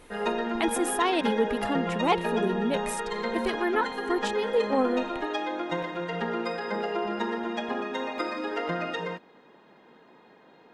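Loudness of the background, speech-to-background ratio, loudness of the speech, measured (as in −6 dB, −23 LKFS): −31.0 LKFS, 2.0 dB, −29.0 LKFS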